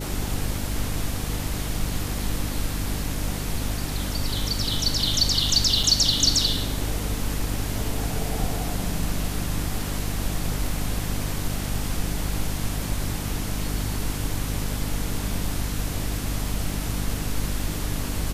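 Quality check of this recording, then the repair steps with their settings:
hum 50 Hz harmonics 6 -30 dBFS
5.83 gap 4.4 ms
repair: de-hum 50 Hz, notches 6; interpolate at 5.83, 4.4 ms

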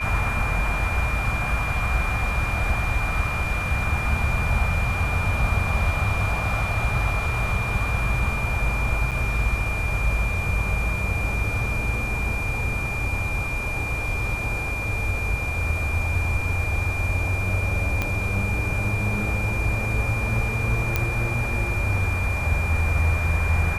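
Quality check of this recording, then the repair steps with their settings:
tone 2400 Hz -28 dBFS
9.11–9.12 gap 7.3 ms
18.02 pop -10 dBFS
20.96 pop -7 dBFS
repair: de-click; notch 2400 Hz, Q 30; interpolate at 9.11, 7.3 ms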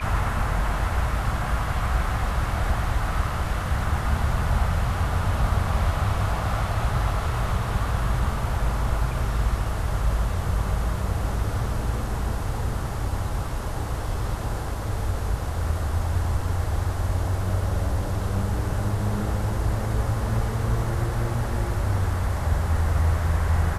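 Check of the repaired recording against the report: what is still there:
18.02 pop

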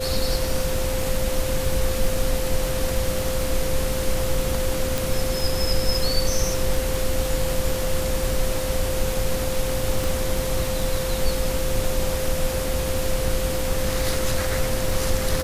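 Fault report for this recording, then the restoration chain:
crackle 27/s -27 dBFS
tone 520 Hz -27 dBFS
4.98 pop
10.04 pop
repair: de-click; notch 520 Hz, Q 30

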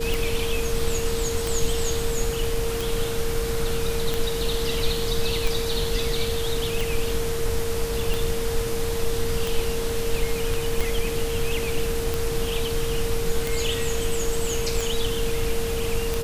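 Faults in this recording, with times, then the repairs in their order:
tick 45 rpm
tone 460 Hz -27 dBFS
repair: de-click; notch 460 Hz, Q 30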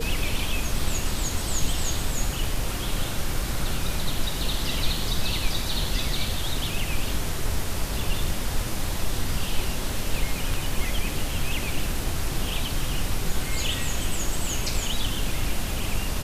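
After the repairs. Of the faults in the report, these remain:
none

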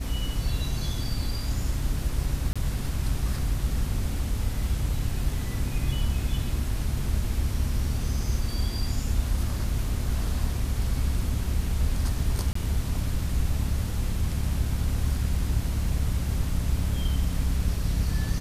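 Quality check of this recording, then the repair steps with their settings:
2.53–2.56 gap 26 ms
12.53–12.55 gap 24 ms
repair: interpolate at 2.53, 26 ms; interpolate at 12.53, 24 ms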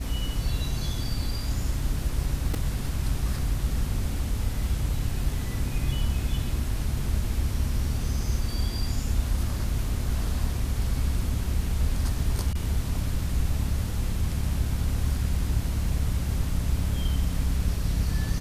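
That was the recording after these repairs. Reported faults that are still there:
none

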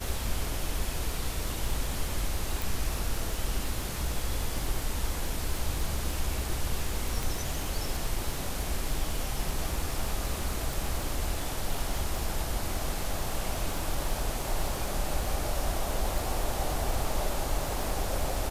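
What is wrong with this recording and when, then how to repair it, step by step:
crackle 47/s -32 dBFS
2.62 pop
7.23 pop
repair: de-click

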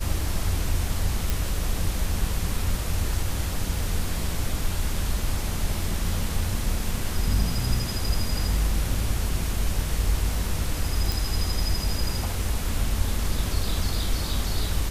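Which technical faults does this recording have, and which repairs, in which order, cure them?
1.3 pop
11.12 pop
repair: de-click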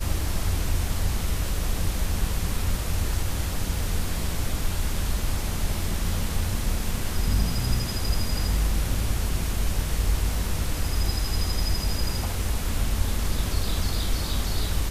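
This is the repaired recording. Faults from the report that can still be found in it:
none

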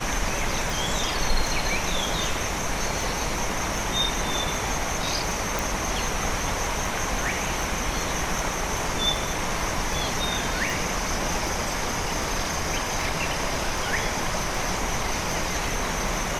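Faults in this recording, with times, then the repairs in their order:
tick 78 rpm
5.59 pop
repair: de-click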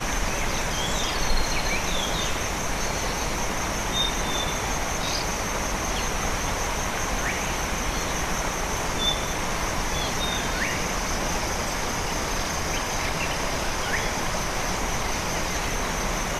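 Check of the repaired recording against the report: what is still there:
none

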